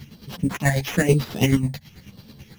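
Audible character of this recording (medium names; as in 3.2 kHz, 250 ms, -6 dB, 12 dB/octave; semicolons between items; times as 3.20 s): chopped level 9.2 Hz, depth 60%, duty 30%; phasing stages 8, 1 Hz, lowest notch 360–2400 Hz; aliases and images of a low sample rate 8.7 kHz, jitter 0%; a shimmering, thickened sound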